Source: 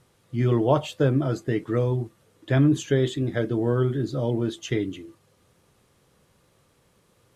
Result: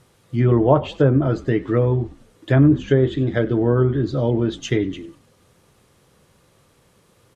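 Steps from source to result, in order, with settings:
echo with shifted repeats 97 ms, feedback 41%, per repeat −51 Hz, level −20.5 dB
treble cut that deepens with the level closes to 1,500 Hz, closed at −17 dBFS
level +5.5 dB

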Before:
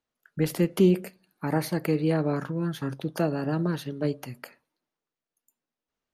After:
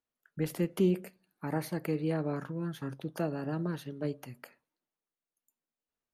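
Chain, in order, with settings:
parametric band 4,600 Hz −3 dB
level −7 dB

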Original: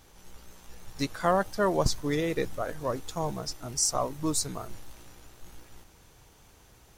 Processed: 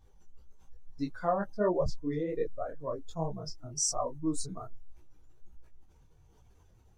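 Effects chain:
expanding power law on the bin magnitudes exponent 1.8
micro pitch shift up and down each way 43 cents

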